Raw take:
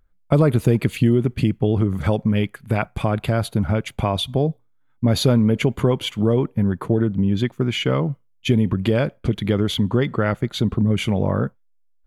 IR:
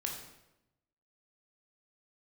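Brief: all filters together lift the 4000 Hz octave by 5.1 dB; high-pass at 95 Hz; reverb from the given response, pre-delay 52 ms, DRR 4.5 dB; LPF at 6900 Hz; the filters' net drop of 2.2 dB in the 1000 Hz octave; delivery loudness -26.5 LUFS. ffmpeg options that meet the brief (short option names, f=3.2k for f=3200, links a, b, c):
-filter_complex "[0:a]highpass=95,lowpass=6.9k,equalizer=f=1k:t=o:g=-3.5,equalizer=f=4k:t=o:g=7,asplit=2[a][b];[1:a]atrim=start_sample=2205,adelay=52[c];[b][c]afir=irnorm=-1:irlink=0,volume=-6dB[d];[a][d]amix=inputs=2:normalize=0,volume=-6.5dB"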